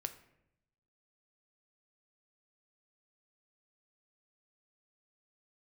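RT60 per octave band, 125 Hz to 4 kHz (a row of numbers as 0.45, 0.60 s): 1.2, 1.0, 0.90, 0.70, 0.75, 0.50 s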